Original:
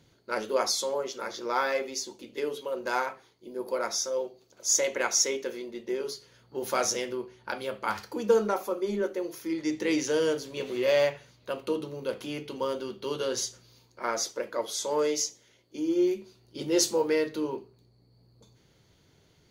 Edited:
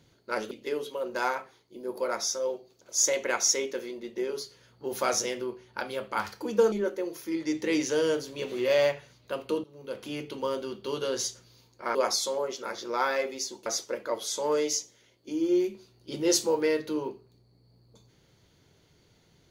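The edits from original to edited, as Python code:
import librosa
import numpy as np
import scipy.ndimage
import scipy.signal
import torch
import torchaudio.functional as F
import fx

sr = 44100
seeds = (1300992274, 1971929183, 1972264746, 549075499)

y = fx.edit(x, sr, fx.move(start_s=0.51, length_s=1.71, to_s=14.13),
    fx.cut(start_s=8.43, length_s=0.47),
    fx.fade_in_from(start_s=11.82, length_s=0.5, floor_db=-24.0), tone=tone)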